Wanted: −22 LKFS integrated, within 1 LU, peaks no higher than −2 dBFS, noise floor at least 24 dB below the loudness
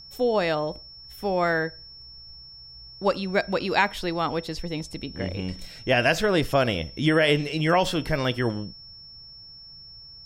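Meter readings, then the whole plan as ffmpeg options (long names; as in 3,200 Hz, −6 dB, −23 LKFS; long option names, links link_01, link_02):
interfering tone 5,400 Hz; level of the tone −43 dBFS; integrated loudness −25.0 LKFS; sample peak −6.5 dBFS; target loudness −22.0 LKFS
→ -af "bandreject=frequency=5400:width=30"
-af "volume=3dB"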